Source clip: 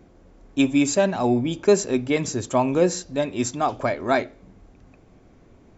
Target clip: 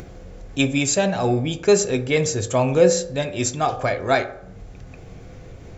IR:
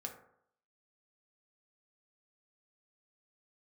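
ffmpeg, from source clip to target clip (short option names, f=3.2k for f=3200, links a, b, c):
-filter_complex "[0:a]equalizer=f=125:t=o:w=1:g=4,equalizer=f=250:t=o:w=1:g=-11,equalizer=f=1k:t=o:w=1:g=-7,acompressor=mode=upward:threshold=-35dB:ratio=2.5,asplit=2[a][b];[1:a]atrim=start_sample=2205[c];[b][c]afir=irnorm=-1:irlink=0,volume=3dB[d];[a][d]amix=inputs=2:normalize=0"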